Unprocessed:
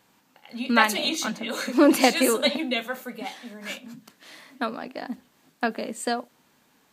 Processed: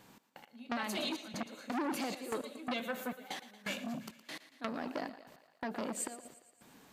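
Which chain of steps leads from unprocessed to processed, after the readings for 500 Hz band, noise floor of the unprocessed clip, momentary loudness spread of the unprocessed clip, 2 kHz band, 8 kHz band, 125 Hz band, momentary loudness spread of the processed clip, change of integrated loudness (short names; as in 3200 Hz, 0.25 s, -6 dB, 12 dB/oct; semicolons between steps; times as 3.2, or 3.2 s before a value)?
-15.5 dB, -64 dBFS, 17 LU, -15.5 dB, -12.5 dB, n/a, 18 LU, -15.5 dB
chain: step gate "xx..x...xxx" 168 bpm -24 dB; limiter -14.5 dBFS, peak gain reduction 11.5 dB; compressor 5:1, threshold -35 dBFS, peak gain reduction 15 dB; low shelf 500 Hz +5.5 dB; on a send: thinning echo 0.115 s, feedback 62%, high-pass 330 Hz, level -14.5 dB; on the sum: core saturation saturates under 2200 Hz; gain +1 dB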